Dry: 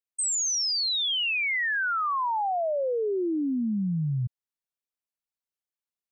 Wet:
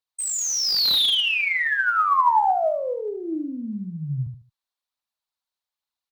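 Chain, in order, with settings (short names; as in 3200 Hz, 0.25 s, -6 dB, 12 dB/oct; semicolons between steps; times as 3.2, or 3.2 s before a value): fifteen-band EQ 160 Hz -3 dB, 400 Hz -5 dB, 4000 Hz +11 dB; added harmonics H 4 -36 dB, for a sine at -12.5 dBFS; bell 950 Hz +9.5 dB 1.3 oct; phaser 1.2 Hz, delay 3.9 ms, feedback 40%; feedback echo 75 ms, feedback 26%, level -7 dB; slew limiter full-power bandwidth 600 Hz; gain -1.5 dB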